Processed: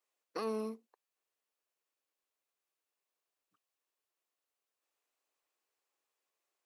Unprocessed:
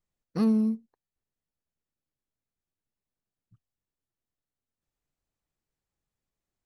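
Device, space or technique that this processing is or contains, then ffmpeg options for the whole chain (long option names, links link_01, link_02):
laptop speaker: -af "highpass=frequency=390:width=0.5412,highpass=frequency=390:width=1.3066,equalizer=frequency=1100:width_type=o:width=0.23:gain=5,equalizer=frequency=2600:width_type=o:width=0.28:gain=4,alimiter=level_in=8dB:limit=-24dB:level=0:latency=1,volume=-8dB,volume=3dB"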